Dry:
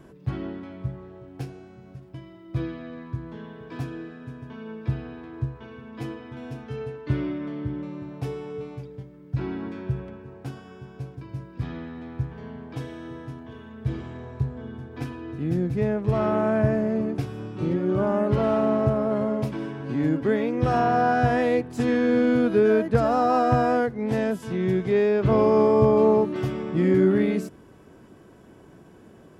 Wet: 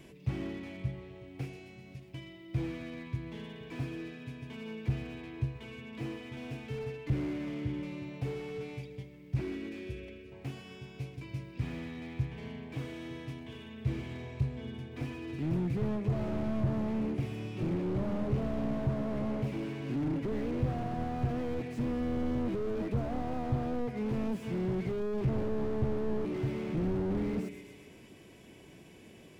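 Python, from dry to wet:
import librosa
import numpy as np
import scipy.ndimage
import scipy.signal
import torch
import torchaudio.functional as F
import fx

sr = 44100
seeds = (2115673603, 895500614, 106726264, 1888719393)

y = fx.high_shelf_res(x, sr, hz=1800.0, db=7.5, q=3.0)
y = fx.echo_feedback(y, sr, ms=128, feedback_pct=57, wet_db=-20)
y = fx.dynamic_eq(y, sr, hz=4500.0, q=1.2, threshold_db=-48.0, ratio=4.0, max_db=-5)
y = fx.fixed_phaser(y, sr, hz=360.0, stages=4, at=(9.41, 10.32))
y = fx.slew_limit(y, sr, full_power_hz=15.0)
y = y * 10.0 ** (-4.5 / 20.0)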